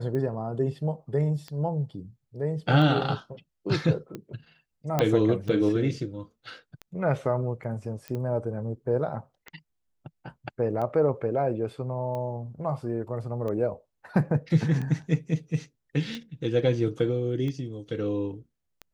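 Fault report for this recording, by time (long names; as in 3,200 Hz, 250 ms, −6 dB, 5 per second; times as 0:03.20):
scratch tick 45 rpm −23 dBFS
0:04.99: click −10 dBFS
0:08.08: click −21 dBFS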